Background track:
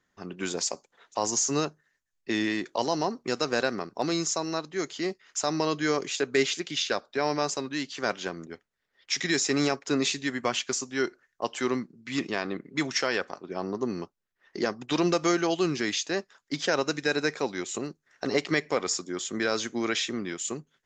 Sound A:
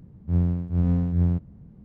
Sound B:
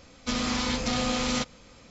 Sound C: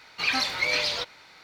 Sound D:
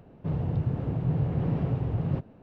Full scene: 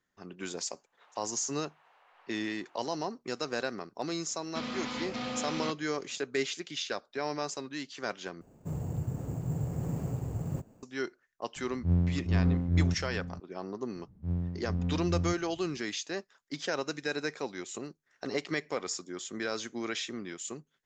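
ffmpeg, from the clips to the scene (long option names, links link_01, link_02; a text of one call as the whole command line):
ffmpeg -i bed.wav -i cue0.wav -i cue1.wav -i cue2.wav -i cue3.wav -filter_complex "[4:a]asplit=2[link_01][link_02];[1:a]asplit=2[link_03][link_04];[0:a]volume=-7dB[link_05];[link_01]highpass=frequency=980:width=0.5412,highpass=frequency=980:width=1.3066[link_06];[2:a]highpass=140,lowpass=3800[link_07];[link_02]acrusher=samples=6:mix=1:aa=0.000001[link_08];[link_03]asplit=2[link_09][link_10];[link_10]adelay=699.7,volume=-13dB,highshelf=frequency=4000:gain=-15.7[link_11];[link_09][link_11]amix=inputs=2:normalize=0[link_12];[link_05]asplit=2[link_13][link_14];[link_13]atrim=end=8.414[link_15];[link_08]atrim=end=2.42,asetpts=PTS-STARTPTS,volume=-6.5dB[link_16];[link_14]atrim=start=10.826[link_17];[link_06]atrim=end=2.42,asetpts=PTS-STARTPTS,volume=-11dB,afade=type=in:duration=0.004:curve=hsin,afade=type=out:start_time=2.416:duration=0.004:curve=hsin,adelay=760[link_18];[link_07]atrim=end=1.9,asetpts=PTS-STARTPTS,volume=-7.5dB,afade=type=in:duration=0.004:curve=hsin,afade=type=out:start_time=1.896:duration=0.004:curve=hsin,adelay=4280[link_19];[link_12]atrim=end=1.84,asetpts=PTS-STARTPTS,volume=-4dB,afade=type=in:duration=0.004:curve=hsin,afade=type=out:start_time=1.836:duration=0.004:curve=hsin,adelay=11560[link_20];[link_04]atrim=end=1.84,asetpts=PTS-STARTPTS,volume=-10dB,afade=type=in:duration=0.004:curve=hsin,afade=type=out:start_time=1.836:duration=0.004:curve=hsin,adelay=13950[link_21];[link_15][link_16]acrossfade=duration=0.004:curve1=hsin:curve2=hsin[link_22];[link_22][link_17]acrossfade=duration=0.004:curve1=hsin:curve2=hsin[link_23];[link_23][link_18][link_19][link_20][link_21]amix=inputs=5:normalize=0" out.wav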